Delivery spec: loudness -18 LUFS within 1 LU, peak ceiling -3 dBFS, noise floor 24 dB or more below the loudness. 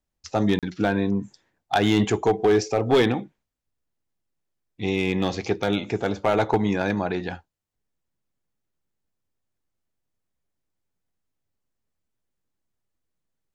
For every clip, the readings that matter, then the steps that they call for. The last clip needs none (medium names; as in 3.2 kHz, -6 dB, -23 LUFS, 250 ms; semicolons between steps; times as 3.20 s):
clipped samples 0.4%; clipping level -12.5 dBFS; dropouts 1; longest dropout 37 ms; loudness -23.5 LUFS; peak level -12.5 dBFS; loudness target -18.0 LUFS
-> clip repair -12.5 dBFS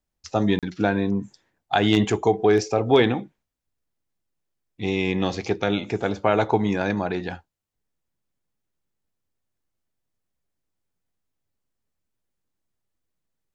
clipped samples 0.0%; dropouts 1; longest dropout 37 ms
-> interpolate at 0.59 s, 37 ms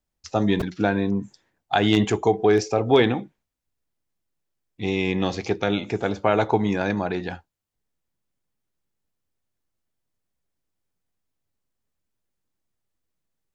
dropouts 0; loudness -23.0 LUFS; peak level -3.5 dBFS; loudness target -18.0 LUFS
-> trim +5 dB; peak limiter -3 dBFS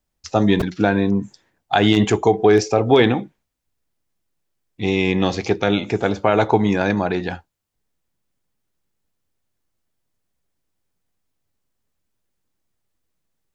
loudness -18.5 LUFS; peak level -3.0 dBFS; noise floor -76 dBFS